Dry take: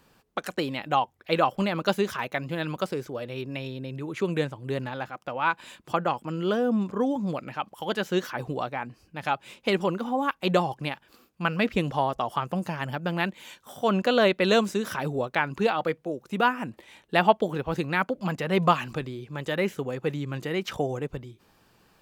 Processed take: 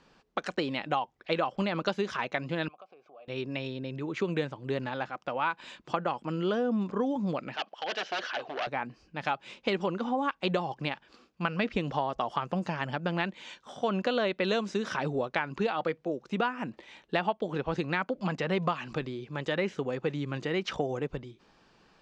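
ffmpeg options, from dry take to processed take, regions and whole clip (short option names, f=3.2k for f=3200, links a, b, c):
-filter_complex "[0:a]asettb=1/sr,asplit=3[a][b][c];[a]atrim=end=2.684[d];[b]atrim=start=2.68:end=3.28,asetpts=PTS-STARTPTS,afade=t=in:d=0.004:c=qsin,afade=t=out:st=0.596:d=0.004:c=qsin,equalizer=f=2.1k:w=6.8:g=6.5,acompressor=threshold=-35dB:ratio=8:attack=3.2:release=140:knee=1:detection=peak,asplit=3[e][f][g];[e]bandpass=f=730:t=q:w=8,volume=0dB[h];[f]bandpass=f=1.09k:t=q:w=8,volume=-6dB[i];[g]bandpass=f=2.44k:t=q:w=8,volume=-9dB[j];[h][i][j]amix=inputs=3:normalize=0[k];[c]atrim=start=3.276[l];[d][k]acrossfade=d=0.004:c1=hsin:c2=qsin[m];[m][l]acrossfade=d=0.004:c1=qsin:c2=hsin,asettb=1/sr,asplit=3[n][o][p];[n]atrim=end=7.564[q];[o]atrim=start=7.56:end=8.67,asetpts=PTS-STARTPTS,afade=t=in:d=0.004:c=qsin,afade=t=out:st=1.106:d=0.004:c=qsin,aeval=exprs='0.0447*(abs(mod(val(0)/0.0447+3,4)-2)-1)':c=same,highpass=440,equalizer=f=670:t=q:w=4:g=7,equalizer=f=980:t=q:w=4:g=-4,equalizer=f=1.6k:t=q:w=4:g=4,equalizer=f=2.9k:t=q:w=4:g=7,lowpass=f=5.8k:w=0.5412,lowpass=f=5.8k:w=1.3066[r];[p]atrim=start=8.666[s];[q][r]acrossfade=d=0.004:c1=hsin:c2=qsin[t];[t][s]acrossfade=d=0.004:c1=qsin:c2=hsin,lowpass=f=6.2k:w=0.5412,lowpass=f=6.2k:w=1.3066,equalizer=f=96:t=o:w=0.55:g=-12,acompressor=threshold=-25dB:ratio=6"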